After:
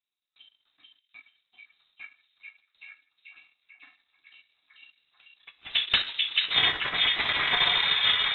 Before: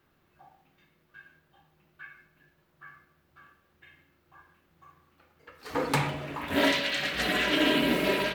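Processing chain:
noise gate with hold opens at −56 dBFS
voice inversion scrambler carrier 3,900 Hz
transient designer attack +6 dB, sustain −12 dB
dynamic equaliser 2,200 Hz, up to +4 dB, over −37 dBFS, Q 0.88
on a send: echo through a band-pass that steps 438 ms, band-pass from 2,800 Hz, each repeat −0.7 octaves, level −1 dB
on the sum: level −3.5 dB

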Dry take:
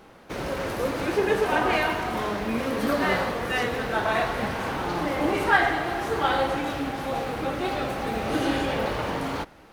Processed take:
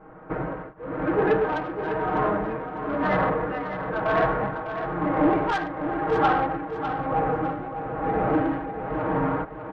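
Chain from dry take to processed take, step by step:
low-pass filter 1,600 Hz 24 dB per octave
comb filter 6.4 ms, depth 93%
soft clipping −17.5 dBFS, distortion −14 dB
shaped tremolo triangle 1 Hz, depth 100%
repeating echo 602 ms, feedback 27%, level −9 dB
level +4.5 dB

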